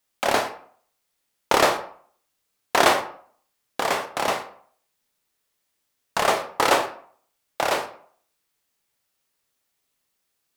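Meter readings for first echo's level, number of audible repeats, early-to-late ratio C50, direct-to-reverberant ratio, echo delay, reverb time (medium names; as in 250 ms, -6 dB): no echo, no echo, 11.0 dB, 6.0 dB, no echo, 0.55 s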